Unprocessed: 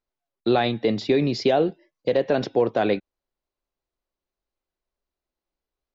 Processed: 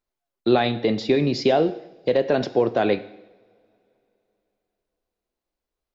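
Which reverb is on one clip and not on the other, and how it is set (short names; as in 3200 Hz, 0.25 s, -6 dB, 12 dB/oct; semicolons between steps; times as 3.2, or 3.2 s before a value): two-slope reverb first 0.82 s, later 3.5 s, from -25 dB, DRR 12 dB; gain +1 dB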